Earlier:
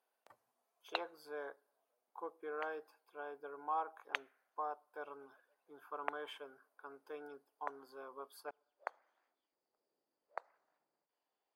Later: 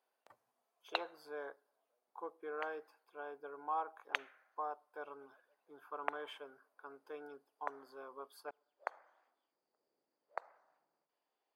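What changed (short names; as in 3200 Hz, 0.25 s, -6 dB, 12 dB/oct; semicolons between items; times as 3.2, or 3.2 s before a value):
speech: add high shelf 8900 Hz -4.5 dB; background: send +11.0 dB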